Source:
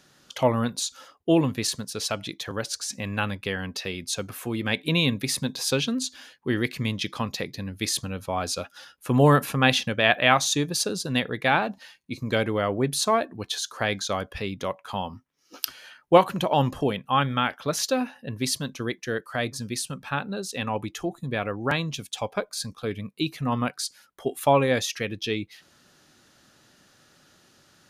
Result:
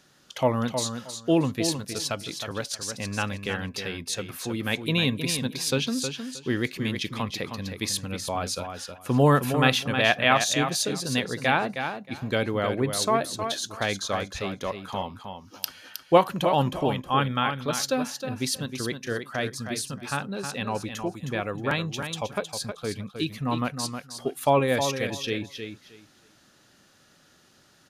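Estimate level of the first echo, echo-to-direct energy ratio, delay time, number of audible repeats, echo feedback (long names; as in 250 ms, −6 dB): −7.5 dB, −7.5 dB, 314 ms, 2, 19%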